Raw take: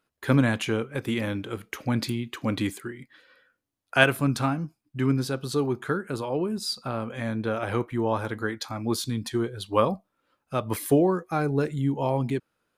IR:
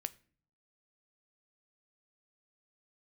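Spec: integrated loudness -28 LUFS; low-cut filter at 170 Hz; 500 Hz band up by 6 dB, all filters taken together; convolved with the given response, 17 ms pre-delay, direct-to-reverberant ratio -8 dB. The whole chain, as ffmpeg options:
-filter_complex "[0:a]highpass=170,equalizer=f=500:t=o:g=7.5,asplit=2[a][b];[1:a]atrim=start_sample=2205,adelay=17[c];[b][c]afir=irnorm=-1:irlink=0,volume=9.5dB[d];[a][d]amix=inputs=2:normalize=0,volume=-12.5dB"

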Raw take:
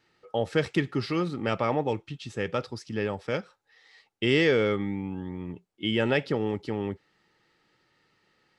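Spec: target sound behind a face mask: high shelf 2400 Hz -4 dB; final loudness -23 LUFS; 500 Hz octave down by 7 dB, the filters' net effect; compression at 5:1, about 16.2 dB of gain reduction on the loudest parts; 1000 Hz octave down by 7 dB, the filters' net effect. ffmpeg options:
-af "equalizer=f=500:t=o:g=-7,equalizer=f=1k:t=o:g=-6.5,acompressor=threshold=-40dB:ratio=5,highshelf=f=2.4k:g=-4,volume=21.5dB"

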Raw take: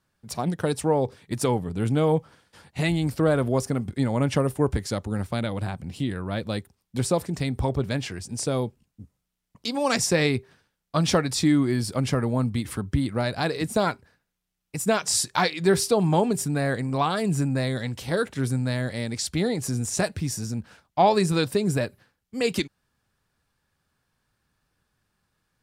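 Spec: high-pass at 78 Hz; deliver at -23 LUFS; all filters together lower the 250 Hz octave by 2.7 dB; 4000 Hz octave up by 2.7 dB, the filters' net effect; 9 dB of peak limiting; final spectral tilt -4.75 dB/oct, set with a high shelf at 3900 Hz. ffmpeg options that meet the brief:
-af "highpass=78,equalizer=f=250:t=o:g=-3.5,highshelf=f=3.9k:g=-3.5,equalizer=f=4k:t=o:g=5.5,volume=5dB,alimiter=limit=-10dB:level=0:latency=1"

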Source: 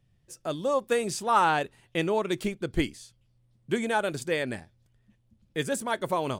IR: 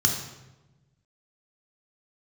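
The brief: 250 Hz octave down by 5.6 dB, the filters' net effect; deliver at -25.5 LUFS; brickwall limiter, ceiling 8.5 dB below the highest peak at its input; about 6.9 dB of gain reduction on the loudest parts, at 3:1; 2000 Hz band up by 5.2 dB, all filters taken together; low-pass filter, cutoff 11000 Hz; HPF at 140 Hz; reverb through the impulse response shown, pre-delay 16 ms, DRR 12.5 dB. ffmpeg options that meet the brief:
-filter_complex "[0:a]highpass=140,lowpass=11k,equalizer=f=250:t=o:g=-7.5,equalizer=f=2k:t=o:g=7,acompressor=threshold=-25dB:ratio=3,alimiter=limit=-21.5dB:level=0:latency=1,asplit=2[a][b];[1:a]atrim=start_sample=2205,adelay=16[c];[b][c]afir=irnorm=-1:irlink=0,volume=-23.5dB[d];[a][d]amix=inputs=2:normalize=0,volume=7.5dB"

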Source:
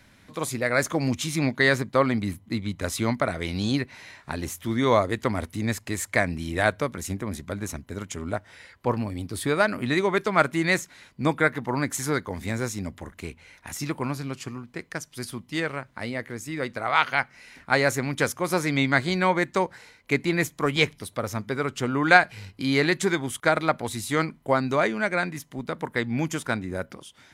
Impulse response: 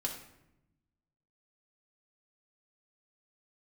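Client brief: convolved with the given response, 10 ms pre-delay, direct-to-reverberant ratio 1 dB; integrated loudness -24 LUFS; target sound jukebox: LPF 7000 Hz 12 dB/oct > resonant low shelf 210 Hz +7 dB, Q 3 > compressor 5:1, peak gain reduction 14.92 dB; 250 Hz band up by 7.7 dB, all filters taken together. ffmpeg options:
-filter_complex "[0:a]equalizer=f=250:t=o:g=8,asplit=2[a][b];[1:a]atrim=start_sample=2205,adelay=10[c];[b][c]afir=irnorm=-1:irlink=0,volume=-2.5dB[d];[a][d]amix=inputs=2:normalize=0,lowpass=7k,lowshelf=f=210:t=q:w=3:g=7,acompressor=threshold=-22dB:ratio=5,volume=2.5dB"

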